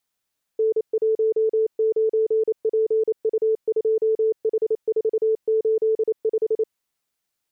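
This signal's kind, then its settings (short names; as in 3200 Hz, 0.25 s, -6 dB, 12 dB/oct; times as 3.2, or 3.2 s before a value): Morse "N19PU2H485" 28 wpm 440 Hz -16.5 dBFS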